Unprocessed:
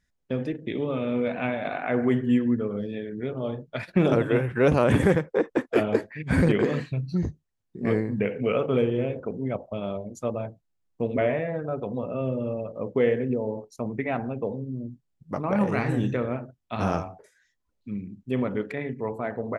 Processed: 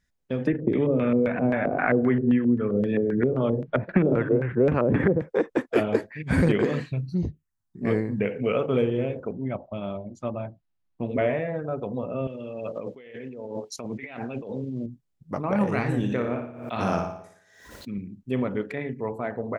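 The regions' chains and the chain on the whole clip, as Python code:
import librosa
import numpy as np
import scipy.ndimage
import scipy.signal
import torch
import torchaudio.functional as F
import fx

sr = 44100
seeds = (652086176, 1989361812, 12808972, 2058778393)

y = fx.chain(x, sr, fx.dynamic_eq(hz=700.0, q=1.2, threshold_db=-36.0, ratio=4.0, max_db=-4),
    fx.filter_lfo_lowpass(shape='square', hz=3.8, low_hz=510.0, high_hz=1800.0, q=1.5),
    fx.band_squash(depth_pct=100), at=(0.47, 5.22))
y = fx.chain(y, sr, fx.env_phaser(low_hz=410.0, high_hz=1700.0, full_db=-21.0),
    fx.peak_eq(hz=2800.0, db=4.5, octaves=0.3), at=(7.09, 7.82))
y = fx.chain(y, sr, fx.lowpass(hz=4000.0, slope=12),
    fx.peak_eq(hz=460.0, db=-11.5, octaves=0.26), at=(9.32, 11.08))
y = fx.chain(y, sr, fx.weighting(curve='D'),
    fx.over_compress(threshold_db=-36.0, ratio=-1.0), at=(12.27, 14.86))
y = fx.chain(y, sr, fx.highpass(hz=150.0, slope=6),
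    fx.room_flutter(wall_m=10.0, rt60_s=0.58),
    fx.pre_swell(db_per_s=66.0), at=(16.0, 17.98))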